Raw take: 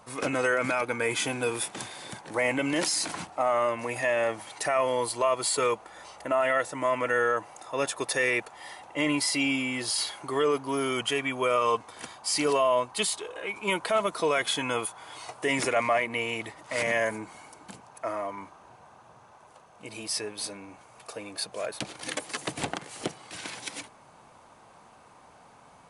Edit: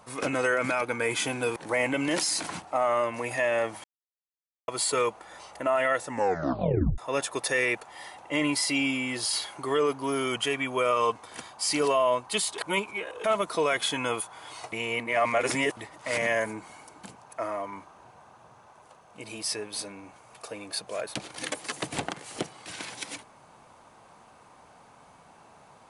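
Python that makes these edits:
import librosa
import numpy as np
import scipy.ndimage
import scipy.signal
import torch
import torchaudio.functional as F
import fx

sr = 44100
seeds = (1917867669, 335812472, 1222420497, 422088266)

y = fx.edit(x, sr, fx.cut(start_s=1.56, length_s=0.65),
    fx.silence(start_s=4.49, length_s=0.84),
    fx.tape_stop(start_s=6.71, length_s=0.92),
    fx.reverse_span(start_s=13.23, length_s=0.66),
    fx.reverse_span(start_s=15.37, length_s=1.05), tone=tone)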